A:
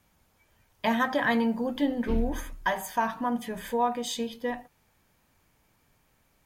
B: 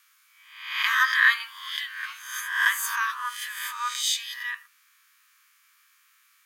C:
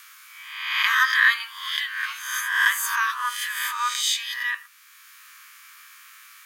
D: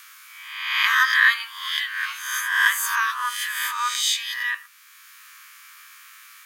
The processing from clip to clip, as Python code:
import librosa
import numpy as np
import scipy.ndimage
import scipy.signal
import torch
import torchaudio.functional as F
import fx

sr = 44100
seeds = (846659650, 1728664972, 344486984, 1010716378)

y1 = fx.spec_swells(x, sr, rise_s=0.72)
y1 = scipy.signal.sosfilt(scipy.signal.butter(16, 1100.0, 'highpass', fs=sr, output='sos'), y1)
y1 = y1 * librosa.db_to_amplitude(7.0)
y2 = fx.band_squash(y1, sr, depth_pct=40)
y2 = y2 * librosa.db_to_amplitude(3.5)
y3 = fx.spec_swells(y2, sr, rise_s=0.44)